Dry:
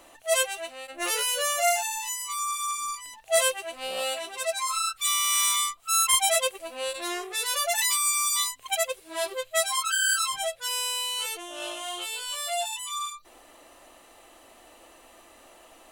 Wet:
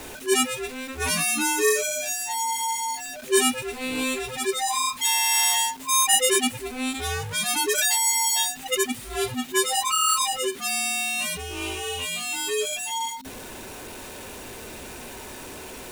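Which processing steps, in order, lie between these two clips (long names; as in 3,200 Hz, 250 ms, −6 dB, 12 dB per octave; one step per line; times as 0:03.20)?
converter with a step at zero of −37 dBFS
frequency shifter −270 Hz
level +2 dB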